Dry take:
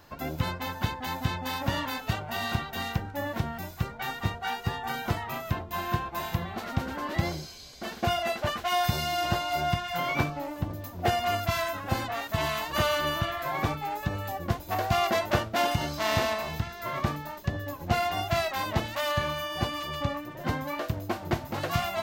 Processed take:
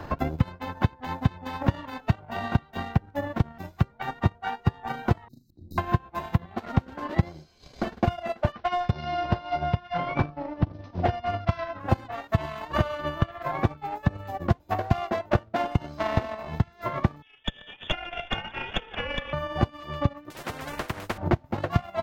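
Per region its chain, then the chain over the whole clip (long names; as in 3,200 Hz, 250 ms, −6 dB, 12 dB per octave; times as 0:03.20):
0:05.28–0:05.78: tube saturation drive 26 dB, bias 0.75 + volume swells 361 ms + linear-phase brick-wall band-stop 370–3,700 Hz
0:08.52–0:11.80: Butterworth low-pass 5,900 Hz 96 dB per octave + hard clipping −20 dBFS
0:17.22–0:19.33: feedback delay that plays each chunk backwards 109 ms, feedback 71%, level −11 dB + voice inversion scrambler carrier 3,500 Hz + tube saturation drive 16 dB, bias 0.6
0:20.30–0:21.18: RIAA equalisation recording + every bin compressed towards the loudest bin 10 to 1
whole clip: low-pass filter 1,200 Hz 6 dB per octave; transient designer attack +11 dB, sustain −12 dB; multiband upward and downward compressor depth 70%; level −2.5 dB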